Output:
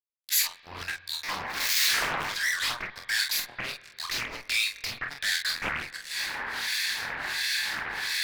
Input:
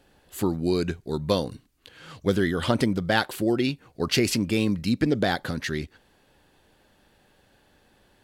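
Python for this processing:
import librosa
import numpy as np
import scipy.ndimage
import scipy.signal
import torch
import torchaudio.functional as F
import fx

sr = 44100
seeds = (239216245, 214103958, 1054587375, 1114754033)

y = fx.zero_step(x, sr, step_db=-27.0, at=(1.23, 2.32))
y = fx.recorder_agc(y, sr, target_db=-12.0, rise_db_per_s=62.0, max_gain_db=30)
y = scipy.signal.sosfilt(scipy.signal.butter(4, 1300.0, 'highpass', fs=sr, output='sos'), y)
y = fx.spec_gate(y, sr, threshold_db=-20, keep='strong')
y = fx.fixed_phaser(y, sr, hz=2000.0, stages=8)
y = fx.fuzz(y, sr, gain_db=40.0, gate_db=-46.0)
y = fx.harmonic_tremolo(y, sr, hz=1.4, depth_pct=100, crossover_hz=1700.0)
y = fx.room_early_taps(y, sr, ms=(25, 47), db=(-6.0, -5.5))
y = fx.rev_spring(y, sr, rt60_s=3.2, pass_ms=(45, 56), chirp_ms=75, drr_db=17.0)
y = fx.doppler_dist(y, sr, depth_ms=0.84)
y = y * 10.0 ** (-8.0 / 20.0)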